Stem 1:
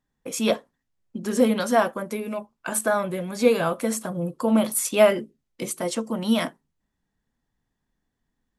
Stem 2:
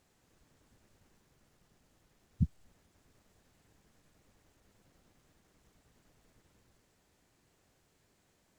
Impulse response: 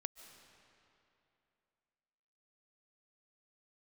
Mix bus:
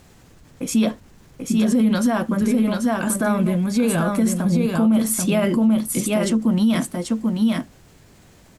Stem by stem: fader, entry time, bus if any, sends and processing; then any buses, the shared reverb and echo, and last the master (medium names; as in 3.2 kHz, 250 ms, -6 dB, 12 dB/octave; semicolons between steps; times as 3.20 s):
+2.5 dB, 0.35 s, no send, echo send -4.5 dB, resonant low shelf 340 Hz +8 dB, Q 1.5
-16.0 dB, 0.00 s, no send, no echo send, tone controls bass +6 dB, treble -1 dB; level flattener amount 70%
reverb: none
echo: delay 787 ms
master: peak limiter -11 dBFS, peak gain reduction 12 dB